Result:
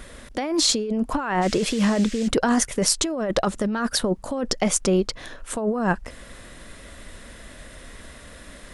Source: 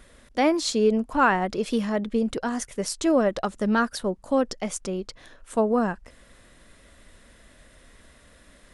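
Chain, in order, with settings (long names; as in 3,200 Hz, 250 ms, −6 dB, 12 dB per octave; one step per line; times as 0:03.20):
compressor whose output falls as the input rises −28 dBFS, ratio −1
0:01.41–0:02.27: noise in a band 1,600–8,100 Hz −46 dBFS
level +6 dB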